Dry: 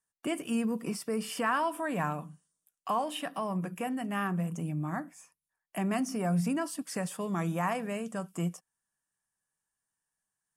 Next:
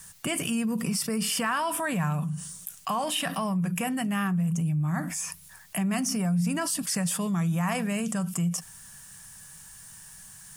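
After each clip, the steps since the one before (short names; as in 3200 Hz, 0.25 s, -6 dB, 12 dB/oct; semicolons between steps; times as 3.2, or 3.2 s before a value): EQ curve 170 Hz 0 dB, 300 Hz -16 dB, 5400 Hz -3 dB; fast leveller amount 70%; gain +3 dB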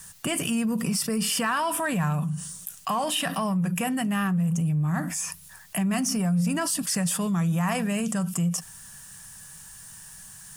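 notch 2200 Hz, Q 19; in parallel at -10 dB: overloaded stage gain 25.5 dB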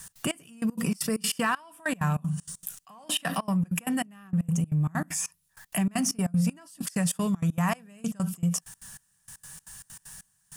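step gate "x.xx....x.xx.xx." 194 bpm -24 dB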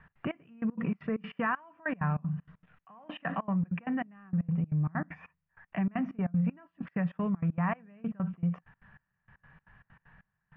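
steep low-pass 2300 Hz 36 dB/oct; gain -3.5 dB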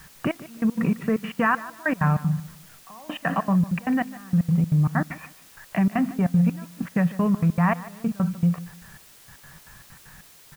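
requantised 10-bit, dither triangular; feedback echo 0.15 s, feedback 27%, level -17 dB; gain +9 dB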